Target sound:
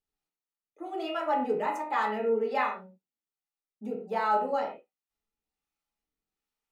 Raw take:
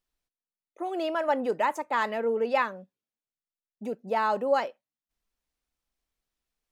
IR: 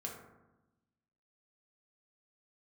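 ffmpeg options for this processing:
-filter_complex "[0:a]acrossover=split=550[a][b];[a]aeval=exprs='val(0)*(1-0.5/2+0.5/2*cos(2*PI*1.3*n/s))':c=same[c];[b]aeval=exprs='val(0)*(1-0.5/2-0.5/2*cos(2*PI*1.3*n/s))':c=same[d];[c][d]amix=inputs=2:normalize=0[e];[1:a]atrim=start_sample=2205,afade=t=out:st=0.3:d=0.01,atrim=end_sample=13671,asetrate=79380,aresample=44100[f];[e][f]afir=irnorm=-1:irlink=0,volume=4.5dB"

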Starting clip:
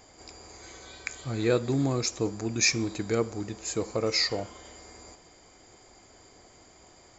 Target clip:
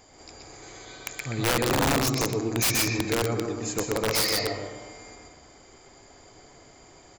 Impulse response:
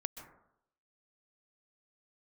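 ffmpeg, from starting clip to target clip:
-filter_complex "[0:a]aecho=1:1:128.3|180.8:0.631|0.316,asplit=2[a][b];[1:a]atrim=start_sample=2205,lowpass=3.4k,adelay=121[c];[b][c]afir=irnorm=-1:irlink=0,volume=-1dB[d];[a][d]amix=inputs=2:normalize=0,aeval=exprs='(mod(7.08*val(0)+1,2)-1)/7.08':c=same"

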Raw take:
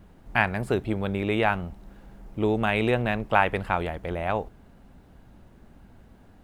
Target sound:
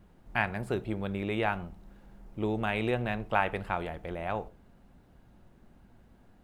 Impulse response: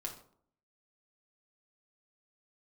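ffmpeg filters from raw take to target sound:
-filter_complex "[0:a]asplit=2[a][b];[1:a]atrim=start_sample=2205,atrim=end_sample=6615[c];[b][c]afir=irnorm=-1:irlink=0,volume=-8dB[d];[a][d]amix=inputs=2:normalize=0,volume=-8.5dB"

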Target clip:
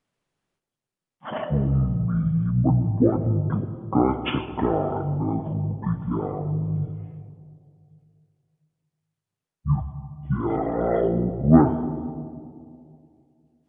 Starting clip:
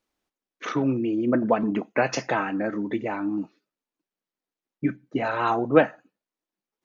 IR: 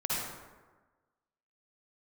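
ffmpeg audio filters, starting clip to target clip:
-filter_complex "[0:a]asplit=2[a][b];[1:a]atrim=start_sample=2205,highshelf=f=3.8k:g=-8.5[c];[b][c]afir=irnorm=-1:irlink=0,volume=-14.5dB[d];[a][d]amix=inputs=2:normalize=0,asetrate=22050,aresample=44100"

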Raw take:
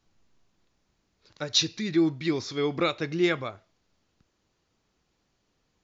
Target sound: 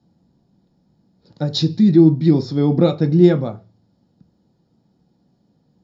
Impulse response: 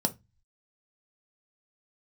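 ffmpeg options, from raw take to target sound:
-filter_complex "[0:a]tiltshelf=f=720:g=6[a];[1:a]atrim=start_sample=2205,asetrate=41013,aresample=44100[b];[a][b]afir=irnorm=-1:irlink=0,volume=-3.5dB"

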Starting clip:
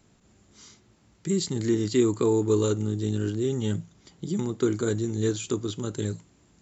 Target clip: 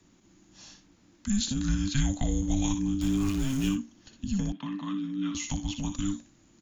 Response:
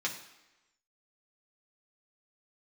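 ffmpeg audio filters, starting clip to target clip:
-filter_complex "[0:a]asettb=1/sr,asplit=3[a][b][c];[a]atrim=end=3.014[d];[b]atrim=start=3.01:end=3.69,asetpts=PTS-STARTPTS,afade=t=in:d=0.004:c=qsin,afade=t=out:st=0.676:d=0.004:c=qsin,aeval=exprs='val(0)+0.5*0.0224*sgn(val(0))':c=same[e];[c]atrim=start=3.686[f];[d][e]acrossfade=d=0.004:c1=hsin:c2=qsin[g];[g][f]acrossfade=d=0.004:c1=qsin:c2=hsin,acrossover=split=310|800|1200[h][i][j][k];[i]acompressor=threshold=-37dB:ratio=6[l];[k]aecho=1:1:60|77:0.422|0.15[m];[h][l][j][m]amix=inputs=4:normalize=0,afreqshift=-400,asettb=1/sr,asplit=3[n][o][p];[n]atrim=end=4.524[q];[o]atrim=start=4.52:end=5.35,asetpts=PTS-STARTPTS,afade=t=in:d=0.004:c=qsin,afade=t=out:st=0.826:d=0.004:c=qsin,highpass=f=200:w=0.5412,highpass=f=200:w=1.3066,equalizer=f=500:t=q:w=4:g=-7,equalizer=f=790:t=q:w=4:g=-9,equalizer=f=1.5k:t=q:w=4:g=-3,lowpass=f=3.2k:w=0.5412,lowpass=f=3.2k:w=1.3066[r];[p]atrim=start=5.346[s];[q][r]acrossfade=d=0.004:c1=hsin:c2=qsin[t];[t][s]acrossfade=d=0.004:c1=qsin:c2=hsin"

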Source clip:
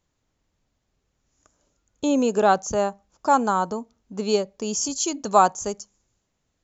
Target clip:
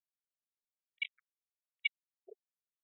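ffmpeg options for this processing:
-filter_complex "[0:a]aeval=exprs='val(0)*sin(2*PI*550*n/s)':c=same,asetrate=103194,aresample=44100,asplit=3[a][b][c];[a]bandpass=f=300:t=q:w=8,volume=0dB[d];[b]bandpass=f=870:t=q:w=8,volume=-6dB[e];[c]bandpass=f=2.24k:t=q:w=8,volume=-9dB[f];[d][e][f]amix=inputs=3:normalize=0,acrusher=bits=3:mix=0:aa=0.5,asubboost=boost=11:cutoff=190,afftfilt=real='re*between(b*sr/1024,500*pow(2800/500,0.5+0.5*sin(2*PI*1.2*pts/sr))/1.41,500*pow(2800/500,0.5+0.5*sin(2*PI*1.2*pts/sr))*1.41)':imag='im*between(b*sr/1024,500*pow(2800/500,0.5+0.5*sin(2*PI*1.2*pts/sr))/1.41,500*pow(2800/500,0.5+0.5*sin(2*PI*1.2*pts/sr))*1.41)':win_size=1024:overlap=0.75,volume=2.5dB"

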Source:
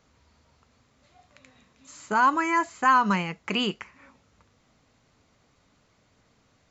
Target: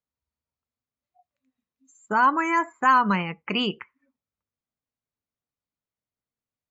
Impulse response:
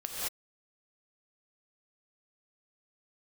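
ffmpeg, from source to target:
-filter_complex "[0:a]asplit=2[a][b];[1:a]atrim=start_sample=2205,atrim=end_sample=4410[c];[b][c]afir=irnorm=-1:irlink=0,volume=-14dB[d];[a][d]amix=inputs=2:normalize=0,afftdn=nr=33:nf=-38"

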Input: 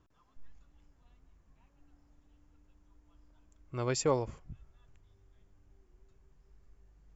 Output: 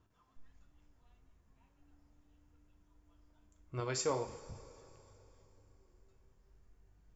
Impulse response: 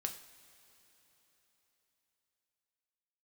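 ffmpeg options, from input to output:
-filter_complex "[0:a]asettb=1/sr,asplit=3[a][b][c];[a]atrim=end=3.804[d];[b]atrim=start=3.8:end=4.36,asetpts=PTS-STARTPTS,afade=t=in:d=0.004:c=qsin,afade=t=out:st=0.556:d=0.004:c=qsin,lowshelf=f=480:g=-7[e];[c]atrim=start=4.356[f];[d][e]acrossfade=d=0.004:c1=hsin:c2=qsin[g];[g][f]acrossfade=d=0.004:c1=qsin:c2=hsin[h];[1:a]atrim=start_sample=2205,asetrate=52920,aresample=44100[i];[h][i]afir=irnorm=-1:irlink=0"

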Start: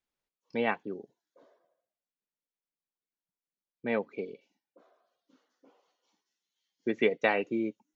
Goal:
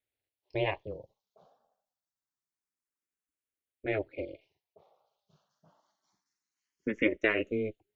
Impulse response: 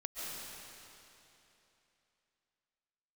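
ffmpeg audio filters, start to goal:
-filter_complex "[0:a]aeval=exprs='val(0)*sin(2*PI*110*n/s)':c=same,asplit=2[a][b];[b]afreqshift=0.26[c];[a][c]amix=inputs=2:normalize=1,volume=4dB"

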